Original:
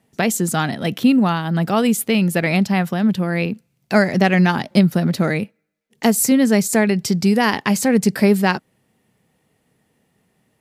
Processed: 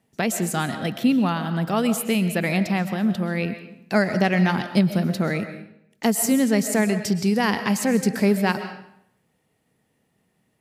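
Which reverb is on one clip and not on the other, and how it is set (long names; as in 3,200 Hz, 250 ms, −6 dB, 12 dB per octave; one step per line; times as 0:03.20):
comb and all-pass reverb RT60 0.71 s, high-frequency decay 0.85×, pre-delay 90 ms, DRR 9.5 dB
level −5 dB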